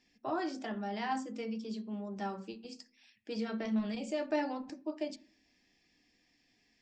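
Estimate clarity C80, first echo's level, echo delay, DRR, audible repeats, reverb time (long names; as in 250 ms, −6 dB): 22.5 dB, no echo audible, no echo audible, 7.5 dB, no echo audible, 0.45 s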